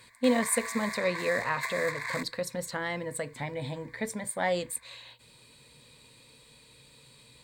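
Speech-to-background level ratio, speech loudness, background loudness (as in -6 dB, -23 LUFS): 5.0 dB, -31.5 LUFS, -36.5 LUFS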